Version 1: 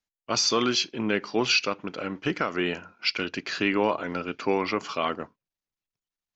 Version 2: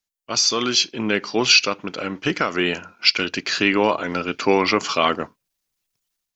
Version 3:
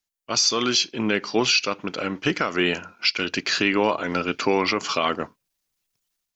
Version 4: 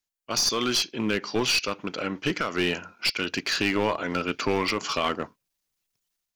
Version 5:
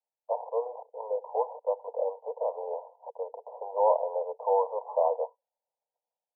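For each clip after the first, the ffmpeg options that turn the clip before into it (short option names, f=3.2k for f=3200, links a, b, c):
-af "highshelf=f=3.8k:g=9.5,dynaudnorm=f=510:g=3:m=12dB,volume=-1dB"
-af "alimiter=limit=-9.5dB:level=0:latency=1:release=234"
-af "aeval=exprs='clip(val(0),-1,0.112)':c=same,volume=-2.5dB"
-af "asuperpass=centerf=670:order=20:qfactor=1.3,volume=6dB"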